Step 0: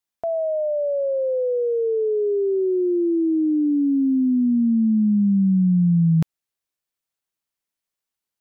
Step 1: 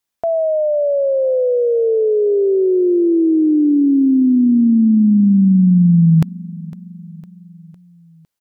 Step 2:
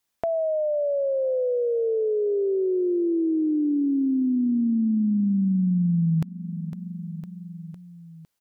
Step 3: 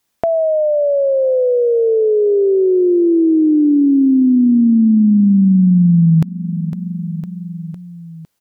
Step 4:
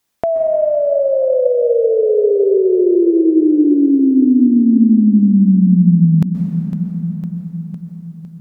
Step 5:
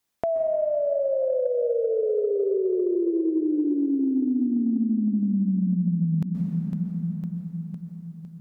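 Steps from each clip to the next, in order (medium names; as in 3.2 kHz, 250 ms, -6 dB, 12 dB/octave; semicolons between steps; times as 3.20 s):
feedback delay 506 ms, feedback 55%, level -20 dB; trim +6.5 dB
compression 2:1, threshold -33 dBFS, peak gain reduction 13 dB; trim +1.5 dB
peaking EQ 210 Hz +3.5 dB 3 oct; trim +8 dB
plate-style reverb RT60 4.5 s, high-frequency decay 0.55×, pre-delay 115 ms, DRR 5.5 dB; trim -1 dB
compression, threshold -13 dBFS, peak gain reduction 7 dB; trim -7.5 dB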